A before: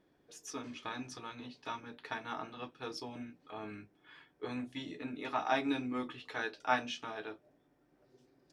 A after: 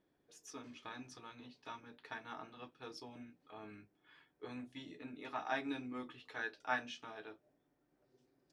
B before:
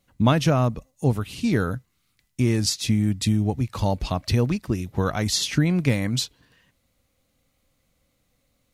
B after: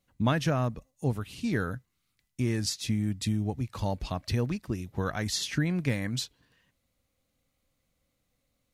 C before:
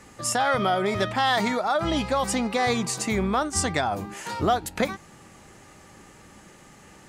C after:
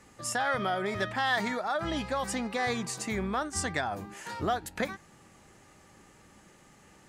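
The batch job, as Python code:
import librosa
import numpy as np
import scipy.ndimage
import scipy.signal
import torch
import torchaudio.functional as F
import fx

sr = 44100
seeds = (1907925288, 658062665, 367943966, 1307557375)

y = fx.dynamic_eq(x, sr, hz=1700.0, q=4.0, threshold_db=-46.0, ratio=4.0, max_db=7)
y = F.gain(torch.from_numpy(y), -7.5).numpy()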